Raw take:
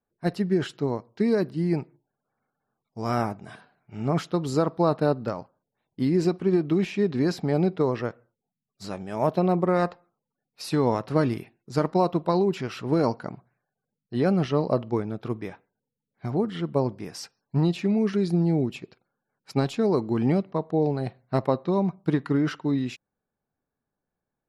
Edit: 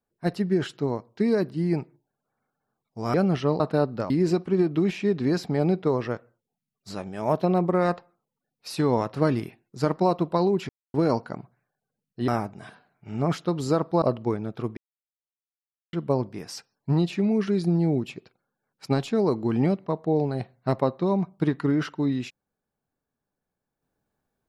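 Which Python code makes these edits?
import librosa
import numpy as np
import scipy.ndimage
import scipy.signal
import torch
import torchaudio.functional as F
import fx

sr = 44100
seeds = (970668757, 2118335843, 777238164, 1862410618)

y = fx.edit(x, sr, fx.swap(start_s=3.14, length_s=1.74, other_s=14.22, other_length_s=0.46),
    fx.cut(start_s=5.38, length_s=0.66),
    fx.silence(start_s=12.63, length_s=0.25),
    fx.silence(start_s=15.43, length_s=1.16), tone=tone)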